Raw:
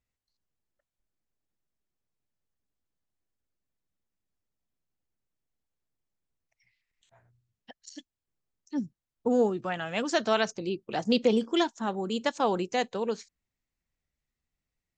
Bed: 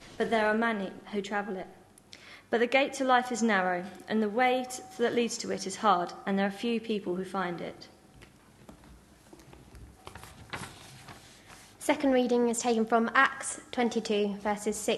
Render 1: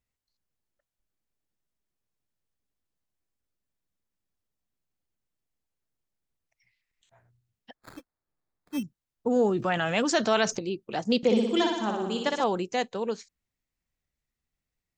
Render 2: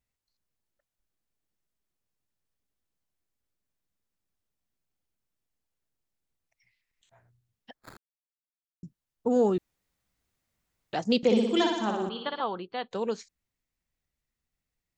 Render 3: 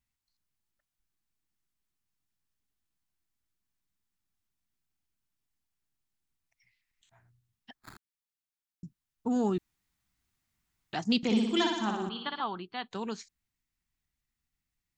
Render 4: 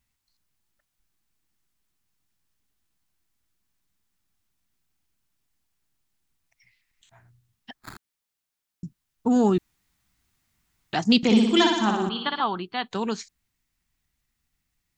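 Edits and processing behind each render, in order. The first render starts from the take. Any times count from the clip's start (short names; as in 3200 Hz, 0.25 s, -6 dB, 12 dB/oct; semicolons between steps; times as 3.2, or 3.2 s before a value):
7.74–8.83 sample-rate reducer 2900 Hz; 9.36–10.59 fast leveller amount 50%; 11.17–12.44 flutter echo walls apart 10.3 m, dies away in 0.92 s
7.97–8.83 mute; 9.58–10.93 room tone; 12.09–12.91 rippled Chebyshev low-pass 4600 Hz, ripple 9 dB
bell 520 Hz -14.5 dB 0.6 oct
gain +8.5 dB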